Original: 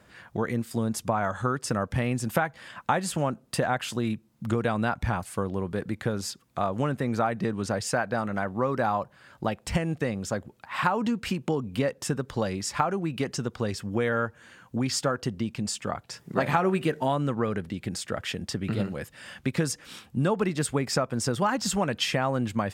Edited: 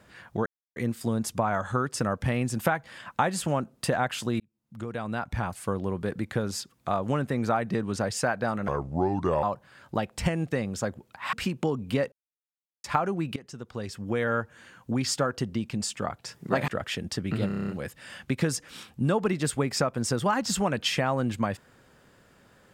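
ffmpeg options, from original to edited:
-filter_complex "[0:a]asplit=17[a][b][c][d][e][f][g][h][i][j][k][l][m][n][o][p][q];[a]atrim=end=0.46,asetpts=PTS-STARTPTS,afade=t=out:st=0.456:d=0.004:c=hsin,apad=pad_dur=0.3[r];[b]atrim=start=0.46:end=4.1,asetpts=PTS-STARTPTS,afade=t=in:d=0.004:c=hsin,afade=t=out:st=3.636:d=0.004:c=hsin[s];[c]atrim=start=4.1:end=8.384,asetpts=PTS-STARTPTS,afade=t=in:d=1.33[t];[d]atrim=start=8.38:end=8.92,asetpts=PTS-STARTPTS,asetrate=31752,aresample=44100[u];[e]atrim=start=8.916:end=10.822[v];[f]atrim=start=11.178:end=11.97,asetpts=PTS-STARTPTS,afade=t=out:st=0.788:d=0.004:c=hsin[w];[g]atrim=start=11.97:end=12.69,asetpts=PTS-STARTPTS,volume=0[x];[h]atrim=start=12.69:end=13.21,asetpts=PTS-STARTPTS,afade=t=in:d=0.004:c=hsin,afade=t=out:st=0.516:d=0.004:c=hsin:silence=0.11885[y];[i]atrim=start=13.21:end=16.532,asetpts=PTS-STARTPTS,afade=t=in:d=0.99:silence=0.11885[z];[j]atrim=start=18.048:end=18.872[aa];[k]atrim=start=18.838:end=18.872[ab];[l]atrim=start=18.838:end=18.872[ac];[m]atrim=start=18.838:end=18.872[ad];[n]atrim=start=18.838:end=18.872[ae];[o]atrim=start=18.838:end=18.872[af];[p]atrim=start=18.838:end=18.872[ag];[q]atrim=start=18.838[ah];[r][s][t]concat=n=3:v=0:a=1[ai];[ai][u]acrossfade=d=0.004:c1=hsin:c2=hsin[aj];[aj][v]acrossfade=d=0.004:c1=hsin:c2=hsin[ak];[w][x][y][z]concat=n=4:v=0:a=1[al];[ak][al]acrossfade=d=0.004:c1=hsin:c2=hsin[am];[am][aa]acrossfade=d=0.004:c1=hsin:c2=hsin[an];[an][ab]acrossfade=d=0.004:c1=hsin:c2=hsin[ao];[ao][ac]acrossfade=d=0.004:c1=hsin:c2=hsin[ap];[ap][ad]acrossfade=d=0.004:c1=hsin:c2=hsin[aq];[aq][ae]acrossfade=d=0.004:c1=hsin:c2=hsin[ar];[ar][af]acrossfade=d=0.004:c1=hsin:c2=hsin[as];[as][ag]acrossfade=d=0.004:c1=hsin:c2=hsin[at];[at][ah]acrossfade=d=0.004:c1=hsin:c2=hsin"

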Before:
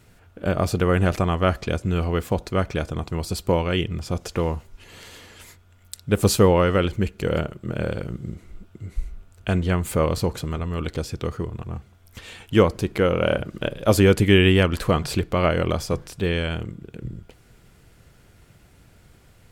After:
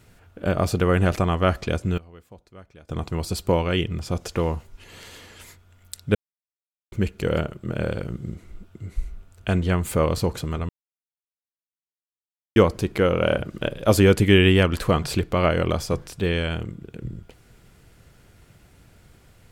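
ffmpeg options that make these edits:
-filter_complex "[0:a]asplit=7[a][b][c][d][e][f][g];[a]atrim=end=1.98,asetpts=PTS-STARTPTS,afade=t=out:st=1.82:d=0.16:c=log:silence=0.0707946[h];[b]atrim=start=1.98:end=2.89,asetpts=PTS-STARTPTS,volume=-23dB[i];[c]atrim=start=2.89:end=6.15,asetpts=PTS-STARTPTS,afade=t=in:d=0.16:c=log:silence=0.0707946,afade=t=out:st=3.256:d=0.004:c=hsin[j];[d]atrim=start=6.15:end=6.92,asetpts=PTS-STARTPTS,volume=0[k];[e]atrim=start=6.92:end=10.69,asetpts=PTS-STARTPTS,afade=t=in:d=0.004:c=hsin,afade=t=out:st=3.766:d=0.004:c=hsin[l];[f]atrim=start=10.69:end=12.56,asetpts=PTS-STARTPTS,volume=0[m];[g]atrim=start=12.56,asetpts=PTS-STARTPTS,afade=t=in:d=0.004:c=hsin[n];[h][i][j][k][l][m][n]concat=n=7:v=0:a=1"

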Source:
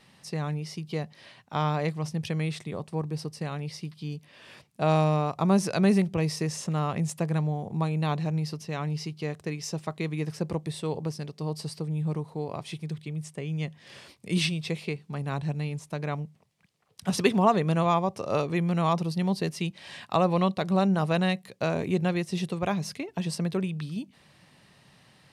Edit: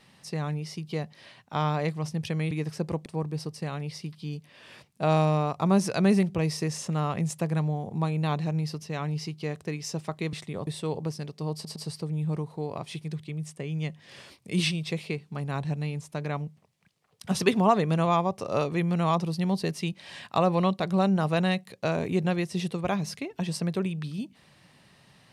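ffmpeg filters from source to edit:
-filter_complex "[0:a]asplit=7[a][b][c][d][e][f][g];[a]atrim=end=2.512[h];[b]atrim=start=10.118:end=10.672[i];[c]atrim=start=2.848:end=10.122[j];[d]atrim=start=2.508:end=2.852[k];[e]atrim=start=10.668:end=11.652[l];[f]atrim=start=11.538:end=11.652[m];[g]atrim=start=11.538[n];[h][i]acrossfade=d=0.004:c1=hsin:c2=hsin[o];[o][j]acrossfade=d=0.004:c1=hsin:c2=hsin[p];[p][k]acrossfade=d=0.004:c1=hsin:c2=hsin[q];[q][l]acrossfade=d=0.004:c1=hsin:c2=hsin[r];[r][m]acrossfade=d=0.004:c1=hsin:c2=hsin[s];[s][n]acrossfade=d=0.004:c1=hsin:c2=hsin"

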